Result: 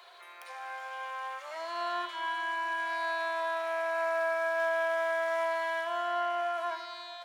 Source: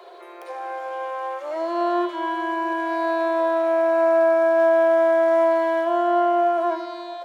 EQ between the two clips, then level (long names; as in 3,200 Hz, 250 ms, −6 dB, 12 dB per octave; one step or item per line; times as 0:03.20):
high-pass filter 1,500 Hz 12 dB per octave
0.0 dB